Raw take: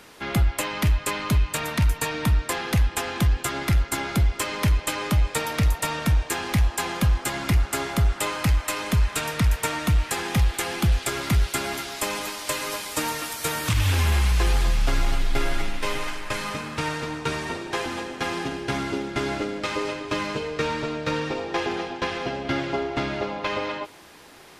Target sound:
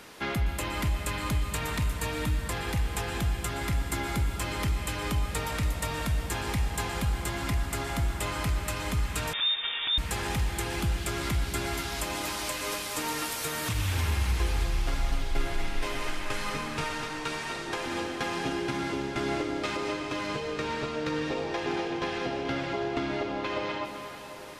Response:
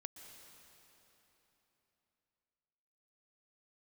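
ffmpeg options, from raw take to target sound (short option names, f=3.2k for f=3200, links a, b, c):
-filter_complex "[0:a]asettb=1/sr,asplit=3[a][b][c];[a]atrim=end=16.844[d];[b]atrim=start=16.84:end=17.67,asetpts=PTS-STARTPTS,afade=t=in:d=0.004:c=qsin,afade=t=out:st=0.826:d=0.004:c=qsin,lowshelf=f=440:g=-11[e];[c]atrim=start=17.666[f];[d][e]acrossfade=d=0.004:c1=hsin:c2=qsin[g];[g][f]acrossfade=d=0.004:c1=qsin:c2=hsin,alimiter=limit=-21dB:level=0:latency=1:release=360[h];[1:a]atrim=start_sample=2205[i];[h][i]afir=irnorm=-1:irlink=0,asettb=1/sr,asplit=3[j][k][l];[j]atrim=end=9.334[m];[k]atrim=start=9.33:end=9.98,asetpts=PTS-STARTPTS,afade=t=in:d=0.004:c=qsin,afade=t=out:st=0.646:d=0.004:c=qsin,lowpass=f=3.1k:t=q:w=0.5098,lowpass=f=3.1k:t=q:w=0.6013,lowpass=f=3.1k:t=q:w=0.9,lowpass=f=3.1k:t=q:w=2.563,afreqshift=-3700[n];[l]atrim=start=9.976[o];[m][n]acrossfade=d=0.004:c1=hsin:c2=qsin[p];[p][o]acrossfade=d=0.004:c1=qsin:c2=hsin,volume=5.5dB"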